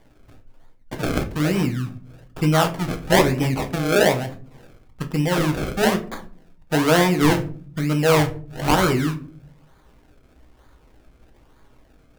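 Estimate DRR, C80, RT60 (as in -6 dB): 5.0 dB, 19.0 dB, 0.45 s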